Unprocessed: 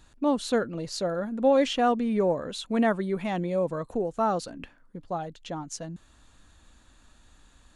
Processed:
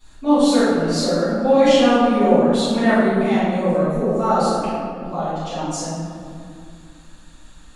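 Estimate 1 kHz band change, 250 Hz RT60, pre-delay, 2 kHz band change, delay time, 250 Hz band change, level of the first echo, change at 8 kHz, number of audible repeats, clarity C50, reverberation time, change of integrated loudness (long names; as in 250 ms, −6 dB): +9.0 dB, 3.3 s, 3 ms, +10.5 dB, no echo audible, +11.0 dB, no echo audible, +10.0 dB, no echo audible, −4.0 dB, 2.3 s, +9.5 dB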